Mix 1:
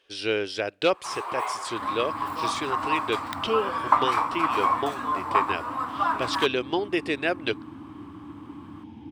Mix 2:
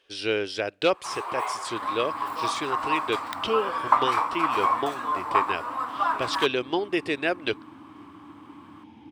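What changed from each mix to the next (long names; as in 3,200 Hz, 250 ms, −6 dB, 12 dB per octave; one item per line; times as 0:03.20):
second sound: add spectral tilt +3 dB per octave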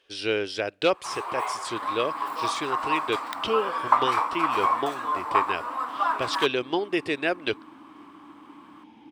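second sound: add parametric band 95 Hz −14.5 dB 1.3 octaves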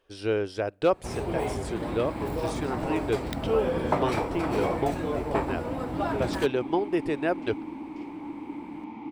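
speech: remove meter weighting curve D
first sound: remove high-pass with resonance 1,100 Hz, resonance Q 7.6
second sound +11.5 dB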